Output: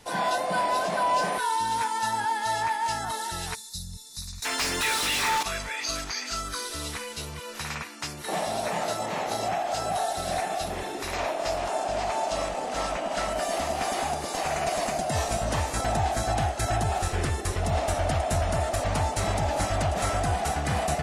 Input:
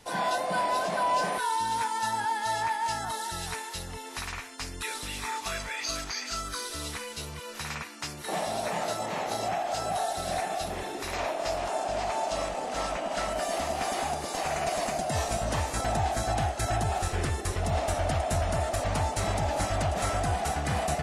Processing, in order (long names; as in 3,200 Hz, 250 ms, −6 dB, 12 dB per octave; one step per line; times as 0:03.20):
0:03.55–0:04.45: gain on a spectral selection 220–3,500 Hz −23 dB
0:04.42–0:05.43: mid-hump overdrive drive 28 dB, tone 6,000 Hz, clips at −20.5 dBFS
level +2 dB